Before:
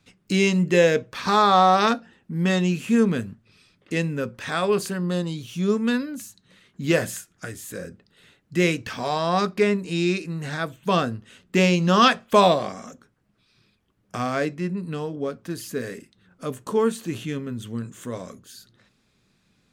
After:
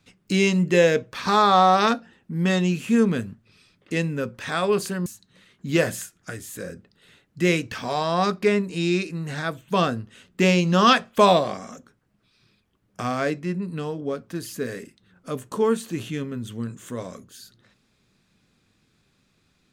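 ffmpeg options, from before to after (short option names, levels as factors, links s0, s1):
-filter_complex "[0:a]asplit=2[s0][s1];[s0]atrim=end=5.062[s2];[s1]atrim=start=6.208[s3];[s2][s3]acrossfade=d=0.004:c1=hsin:c2=hsin"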